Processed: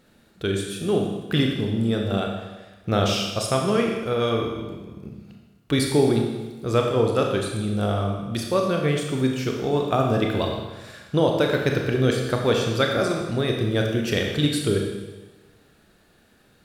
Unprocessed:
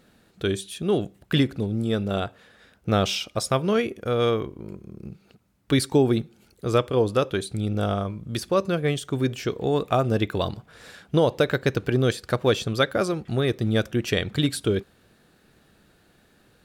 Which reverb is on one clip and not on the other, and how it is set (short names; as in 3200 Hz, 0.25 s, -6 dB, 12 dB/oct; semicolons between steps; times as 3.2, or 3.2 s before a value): Schroeder reverb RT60 1.2 s, combs from 27 ms, DRR 1 dB; gain -1 dB